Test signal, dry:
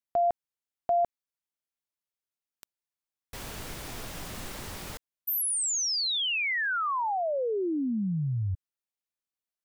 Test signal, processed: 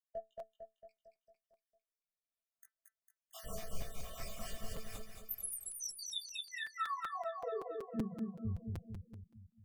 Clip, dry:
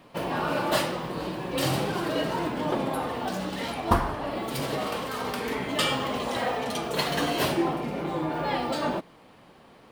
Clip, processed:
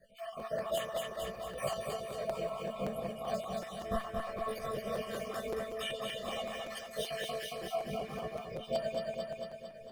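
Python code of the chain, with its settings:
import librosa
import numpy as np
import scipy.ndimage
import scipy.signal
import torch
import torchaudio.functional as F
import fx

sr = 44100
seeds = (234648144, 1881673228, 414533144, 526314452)

y = fx.spec_dropout(x, sr, seeds[0], share_pct=61)
y = fx.chorus_voices(y, sr, voices=4, hz=1.3, base_ms=18, depth_ms=3.0, mix_pct=55)
y = fx.high_shelf(y, sr, hz=8800.0, db=5.5)
y = y + 0.98 * np.pad(y, (int(1.7 * sr / 1000.0), 0))[:len(y)]
y = fx.rotary(y, sr, hz=1.1)
y = fx.echo_feedback(y, sr, ms=226, feedback_pct=53, wet_db=-4.0)
y = fx.tremolo_shape(y, sr, shape='triangle', hz=4.3, depth_pct=50)
y = fx.peak_eq(y, sr, hz=680.0, db=7.0, octaves=0.26)
y = fx.comb_fb(y, sr, f0_hz=220.0, decay_s=0.21, harmonics='all', damping=0.5, mix_pct=90)
y = fx.rider(y, sr, range_db=3, speed_s=0.5)
y = fx.notch(y, sr, hz=4100.0, q=12.0)
y = fx.buffer_crackle(y, sr, first_s=0.39, period_s=0.19, block=256, kind='repeat')
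y = F.gain(torch.from_numpy(y), 7.0).numpy()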